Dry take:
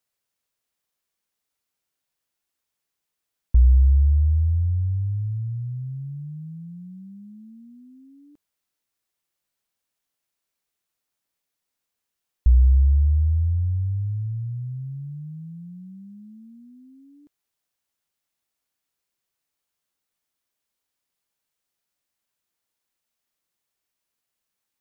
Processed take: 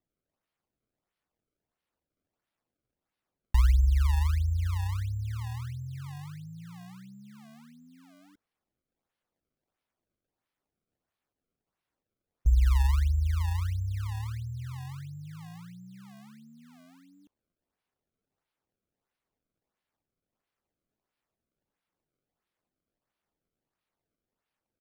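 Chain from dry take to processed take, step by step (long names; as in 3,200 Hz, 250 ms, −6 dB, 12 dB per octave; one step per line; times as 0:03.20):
pitch-shifted copies added −7 semitones −9 dB
sample-and-hold swept by an LFO 28×, swing 160% 1.5 Hz
level −7.5 dB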